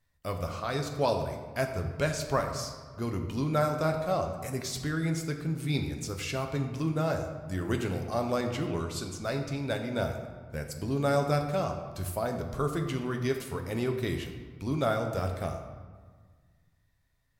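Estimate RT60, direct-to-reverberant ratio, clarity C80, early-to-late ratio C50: 1.6 s, 3.5 dB, 8.0 dB, 7.0 dB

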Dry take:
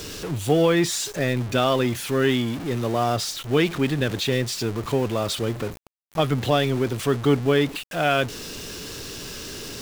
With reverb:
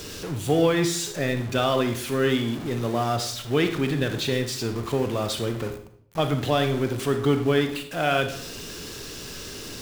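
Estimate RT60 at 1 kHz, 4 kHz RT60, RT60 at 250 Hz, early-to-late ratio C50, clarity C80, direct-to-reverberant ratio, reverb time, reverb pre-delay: 0.60 s, 0.50 s, 0.70 s, 9.0 dB, 13.0 dB, 7.0 dB, 0.65 s, 32 ms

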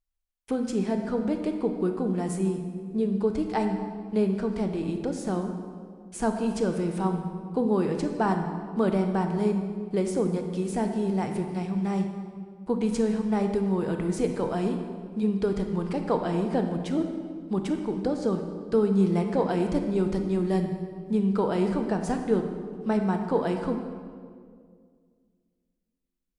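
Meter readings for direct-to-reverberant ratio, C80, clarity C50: 5.0 dB, 7.5 dB, 6.0 dB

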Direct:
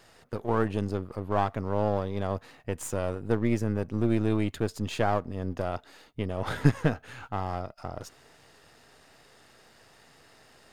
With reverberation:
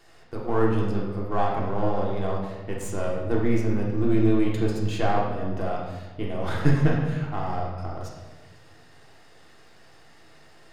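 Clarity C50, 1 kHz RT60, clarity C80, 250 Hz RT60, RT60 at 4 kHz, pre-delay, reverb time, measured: 2.0 dB, 1.1 s, 4.5 dB, 1.6 s, 0.95 s, 3 ms, 1.2 s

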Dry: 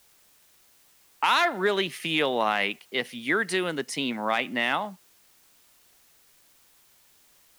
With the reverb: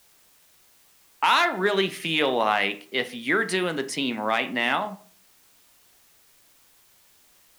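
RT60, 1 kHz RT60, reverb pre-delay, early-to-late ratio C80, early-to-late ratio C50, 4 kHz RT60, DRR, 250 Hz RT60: 0.45 s, 0.40 s, 9 ms, 20.0 dB, 15.5 dB, 0.25 s, 8.5 dB, 0.45 s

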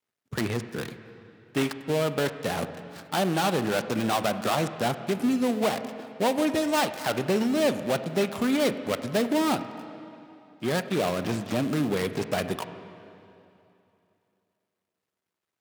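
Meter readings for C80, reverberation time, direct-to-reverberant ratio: 11.5 dB, 2.8 s, 10.0 dB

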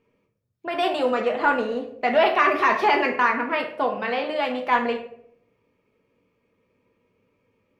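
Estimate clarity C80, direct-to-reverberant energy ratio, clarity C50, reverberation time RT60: 11.5 dB, 1.5 dB, 8.0 dB, 0.65 s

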